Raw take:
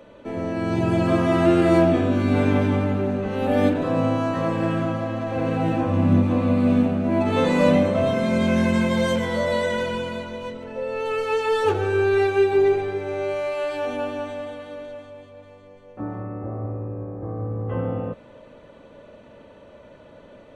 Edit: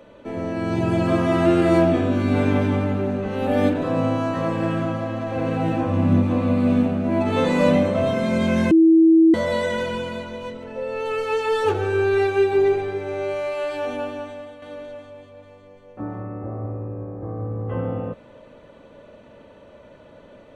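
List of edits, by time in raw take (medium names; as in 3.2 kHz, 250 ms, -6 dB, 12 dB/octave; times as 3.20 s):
8.71–9.34 s: bleep 325 Hz -9.5 dBFS
13.91–14.62 s: fade out, to -7.5 dB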